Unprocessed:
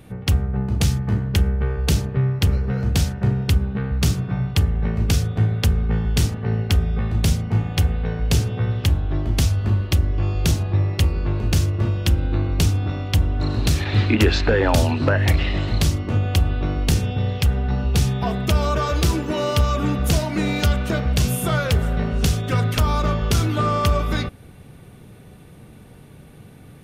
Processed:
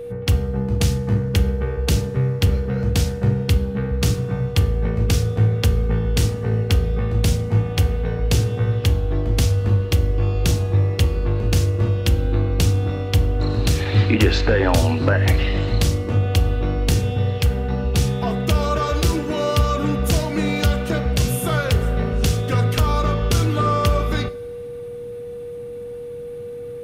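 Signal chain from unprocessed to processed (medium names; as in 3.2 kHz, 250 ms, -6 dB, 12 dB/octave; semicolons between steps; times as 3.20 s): whistle 480 Hz -29 dBFS; two-slope reverb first 0.49 s, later 2.7 s, from -20 dB, DRR 12.5 dB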